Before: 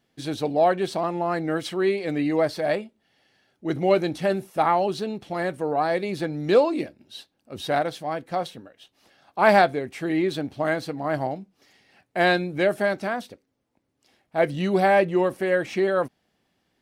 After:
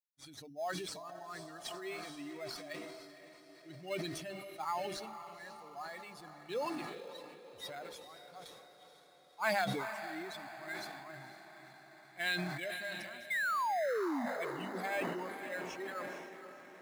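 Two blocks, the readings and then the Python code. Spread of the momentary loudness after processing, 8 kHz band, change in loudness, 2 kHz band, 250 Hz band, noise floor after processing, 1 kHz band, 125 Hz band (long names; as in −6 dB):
19 LU, can't be measured, −15.5 dB, −10.5 dB, −17.5 dB, −60 dBFS, −14.5 dB, −17.5 dB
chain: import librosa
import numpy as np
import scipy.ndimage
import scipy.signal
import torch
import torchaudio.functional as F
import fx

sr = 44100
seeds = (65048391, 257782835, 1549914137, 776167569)

p1 = fx.bin_expand(x, sr, power=2.0)
p2 = fx.tone_stack(p1, sr, knobs='5-5-5')
p3 = fx.spec_paint(p2, sr, seeds[0], shape='fall', start_s=13.3, length_s=0.96, low_hz=220.0, high_hz=2200.0, level_db=-35.0)
p4 = fx.low_shelf(p3, sr, hz=200.0, db=-9.5)
p5 = fx.hum_notches(p4, sr, base_hz=50, count=5)
p6 = fx.echo_diffused(p5, sr, ms=500, feedback_pct=63, wet_db=-10)
p7 = fx.sample_hold(p6, sr, seeds[1], rate_hz=5700.0, jitter_pct=0)
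p8 = p6 + F.gain(torch.from_numpy(p7), -9.0).numpy()
y = fx.sustainer(p8, sr, db_per_s=33.0)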